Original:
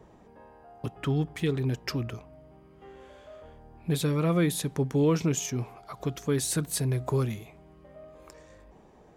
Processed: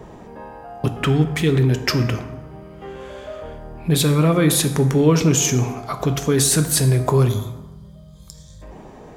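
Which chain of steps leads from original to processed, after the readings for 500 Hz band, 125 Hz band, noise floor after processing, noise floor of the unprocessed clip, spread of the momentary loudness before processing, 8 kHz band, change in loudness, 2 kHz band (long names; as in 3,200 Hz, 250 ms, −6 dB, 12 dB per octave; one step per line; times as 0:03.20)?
+9.5 dB, +11.0 dB, −42 dBFS, −56 dBFS, 15 LU, +13.5 dB, +11.0 dB, +12.0 dB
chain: gain on a spectral selection 0:07.29–0:08.62, 210–3,100 Hz −21 dB
in parallel at −2.5 dB: compressor whose output falls as the input rises −32 dBFS, ratio −1
on the sum: dense smooth reverb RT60 1.2 s, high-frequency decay 0.55×, pre-delay 0 ms, DRR 7.5 dB
level +7 dB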